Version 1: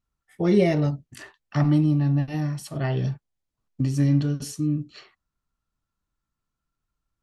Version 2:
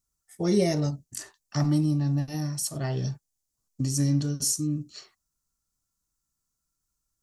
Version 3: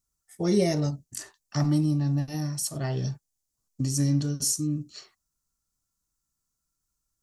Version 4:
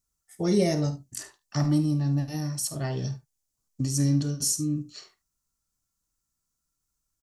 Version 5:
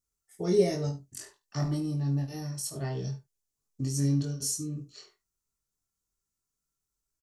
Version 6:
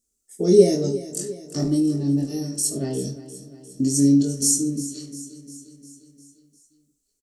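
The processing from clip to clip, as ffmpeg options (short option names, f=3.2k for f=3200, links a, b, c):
-af "highshelf=f=4.3k:t=q:w=1.5:g=14,volume=-4dB"
-af anull
-af "aecho=1:1:50|74:0.178|0.133"
-filter_complex "[0:a]equalizer=f=410:w=5.1:g=8.5,asplit=2[a][b];[b]adelay=22,volume=-3dB[c];[a][c]amix=inputs=2:normalize=0,volume=-7dB"
-af "equalizer=f=125:t=o:w=1:g=-7,equalizer=f=250:t=o:w=1:g=12,equalizer=f=500:t=o:w=1:g=5,equalizer=f=1k:t=o:w=1:g=-11,equalizer=f=2k:t=o:w=1:g=-5,equalizer=f=8k:t=o:w=1:g=10,aecho=1:1:352|704|1056|1408|1760|2112:0.178|0.103|0.0598|0.0347|0.0201|0.0117,volume=4.5dB"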